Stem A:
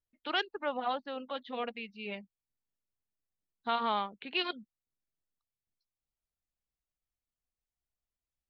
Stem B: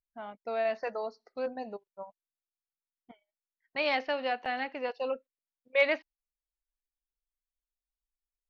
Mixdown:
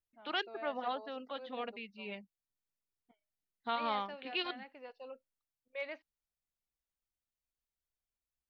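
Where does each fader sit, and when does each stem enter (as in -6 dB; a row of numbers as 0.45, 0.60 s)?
-4.0, -16.0 dB; 0.00, 0.00 s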